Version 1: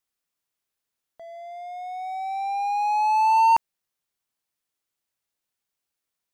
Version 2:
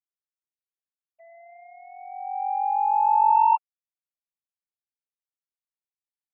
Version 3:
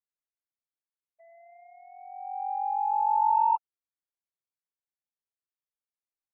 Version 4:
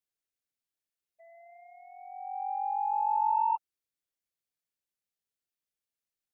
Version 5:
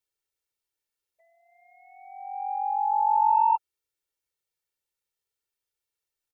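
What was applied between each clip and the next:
sine-wave speech
steep low-pass 2100 Hz 36 dB/oct; gain -5 dB
bell 1000 Hz -8 dB 0.91 oct; gain +3 dB
comb 2.2 ms, depth 76%; gain +1.5 dB

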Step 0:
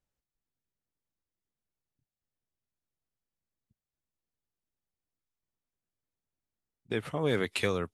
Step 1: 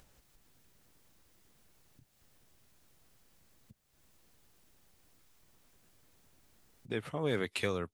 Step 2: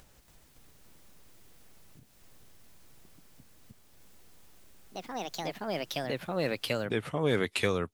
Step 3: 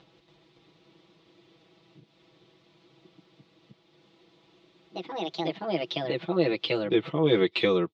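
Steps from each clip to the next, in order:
upward compressor, threshold -38 dBFS; gain -4 dB
echoes that change speed 0.282 s, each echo +3 st, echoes 3; gain +5 dB
speaker cabinet 130–4200 Hz, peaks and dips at 360 Hz +10 dB, 1600 Hz -8 dB, 3600 Hz +5 dB; comb 6.1 ms, depth 99%

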